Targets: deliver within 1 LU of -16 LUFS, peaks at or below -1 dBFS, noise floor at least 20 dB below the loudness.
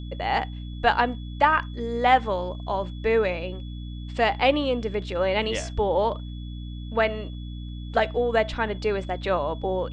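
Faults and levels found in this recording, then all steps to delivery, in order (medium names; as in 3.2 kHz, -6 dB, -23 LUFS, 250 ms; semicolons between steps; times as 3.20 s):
hum 60 Hz; highest harmonic 300 Hz; hum level -32 dBFS; steady tone 3.4 kHz; tone level -49 dBFS; loudness -25.0 LUFS; peak level -5.0 dBFS; loudness target -16.0 LUFS
-> de-hum 60 Hz, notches 5; band-stop 3.4 kHz, Q 30; trim +9 dB; peak limiter -1 dBFS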